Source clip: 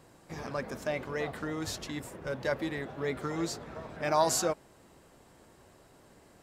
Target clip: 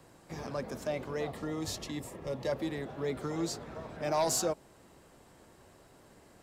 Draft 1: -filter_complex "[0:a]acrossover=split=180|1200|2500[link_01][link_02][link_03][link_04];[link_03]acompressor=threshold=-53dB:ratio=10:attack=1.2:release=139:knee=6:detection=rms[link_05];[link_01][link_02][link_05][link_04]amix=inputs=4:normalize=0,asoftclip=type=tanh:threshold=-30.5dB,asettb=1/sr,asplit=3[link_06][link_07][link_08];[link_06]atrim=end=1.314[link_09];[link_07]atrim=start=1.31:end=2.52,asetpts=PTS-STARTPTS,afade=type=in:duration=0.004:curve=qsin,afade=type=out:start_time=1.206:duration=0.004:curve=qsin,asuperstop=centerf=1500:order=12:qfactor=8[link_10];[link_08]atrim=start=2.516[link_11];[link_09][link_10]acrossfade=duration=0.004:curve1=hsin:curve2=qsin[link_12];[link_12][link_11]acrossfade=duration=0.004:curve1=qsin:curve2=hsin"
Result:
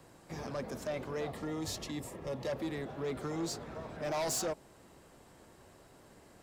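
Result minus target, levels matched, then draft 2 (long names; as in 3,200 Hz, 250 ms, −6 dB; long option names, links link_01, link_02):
soft clipping: distortion +9 dB
-filter_complex "[0:a]acrossover=split=180|1200|2500[link_01][link_02][link_03][link_04];[link_03]acompressor=threshold=-53dB:ratio=10:attack=1.2:release=139:knee=6:detection=rms[link_05];[link_01][link_02][link_05][link_04]amix=inputs=4:normalize=0,asoftclip=type=tanh:threshold=-21dB,asettb=1/sr,asplit=3[link_06][link_07][link_08];[link_06]atrim=end=1.314[link_09];[link_07]atrim=start=1.31:end=2.52,asetpts=PTS-STARTPTS,afade=type=in:duration=0.004:curve=qsin,afade=type=out:start_time=1.206:duration=0.004:curve=qsin,asuperstop=centerf=1500:order=12:qfactor=8[link_10];[link_08]atrim=start=2.516[link_11];[link_09][link_10]acrossfade=duration=0.004:curve1=hsin:curve2=qsin[link_12];[link_12][link_11]acrossfade=duration=0.004:curve1=qsin:curve2=hsin"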